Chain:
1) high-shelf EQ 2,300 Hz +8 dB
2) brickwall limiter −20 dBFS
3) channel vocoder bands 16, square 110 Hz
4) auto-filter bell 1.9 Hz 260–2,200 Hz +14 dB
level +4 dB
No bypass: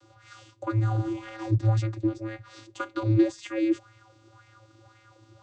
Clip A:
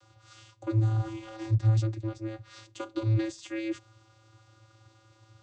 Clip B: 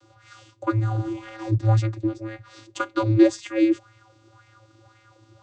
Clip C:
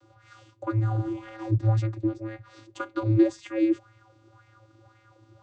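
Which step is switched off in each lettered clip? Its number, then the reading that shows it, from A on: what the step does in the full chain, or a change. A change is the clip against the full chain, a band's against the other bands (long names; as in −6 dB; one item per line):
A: 4, 125 Hz band +6.5 dB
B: 2, change in crest factor +2.5 dB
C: 1, 2 kHz band −2.5 dB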